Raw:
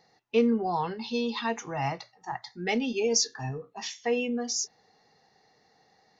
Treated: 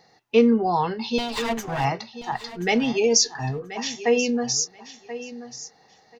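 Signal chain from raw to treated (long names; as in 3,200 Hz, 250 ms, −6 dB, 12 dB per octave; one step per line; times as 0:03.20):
0:01.18–0:01.85: lower of the sound and its delayed copy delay 7.4 ms
repeating echo 1,032 ms, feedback 17%, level −14 dB
level +6.5 dB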